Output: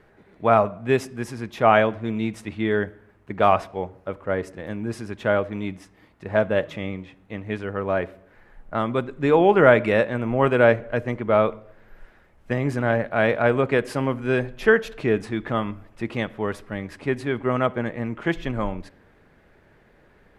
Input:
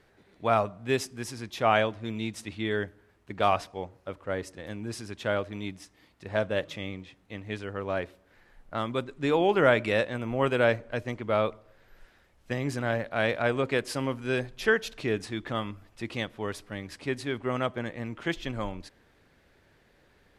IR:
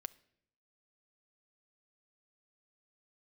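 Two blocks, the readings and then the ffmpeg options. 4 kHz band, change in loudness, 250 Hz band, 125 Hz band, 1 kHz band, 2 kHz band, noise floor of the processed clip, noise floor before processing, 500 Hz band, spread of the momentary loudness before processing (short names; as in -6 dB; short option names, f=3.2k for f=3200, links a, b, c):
-1.0 dB, +7.0 dB, +7.5 dB, +6.5 dB, +6.5 dB, +5.5 dB, -57 dBFS, -64 dBFS, +7.5 dB, 14 LU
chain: -filter_complex "[0:a]asplit=2[a][b];[1:a]atrim=start_sample=2205,lowpass=2.5k[c];[b][c]afir=irnorm=-1:irlink=0,volume=9dB[d];[a][d]amix=inputs=2:normalize=0,volume=-1.5dB"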